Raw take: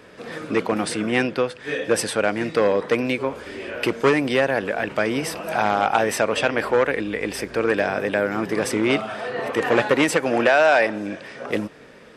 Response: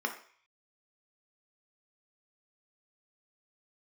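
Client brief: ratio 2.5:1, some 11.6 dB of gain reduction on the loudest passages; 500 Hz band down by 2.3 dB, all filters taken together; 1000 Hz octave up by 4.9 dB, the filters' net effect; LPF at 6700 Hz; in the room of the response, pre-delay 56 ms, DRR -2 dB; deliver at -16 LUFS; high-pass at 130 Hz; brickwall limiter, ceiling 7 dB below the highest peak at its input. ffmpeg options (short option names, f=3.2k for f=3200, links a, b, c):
-filter_complex "[0:a]highpass=130,lowpass=6.7k,equalizer=f=500:t=o:g=-5.5,equalizer=f=1k:t=o:g=9,acompressor=threshold=-28dB:ratio=2.5,alimiter=limit=-17.5dB:level=0:latency=1,asplit=2[a][b];[1:a]atrim=start_sample=2205,adelay=56[c];[b][c]afir=irnorm=-1:irlink=0,volume=-4dB[d];[a][d]amix=inputs=2:normalize=0,volume=10dB"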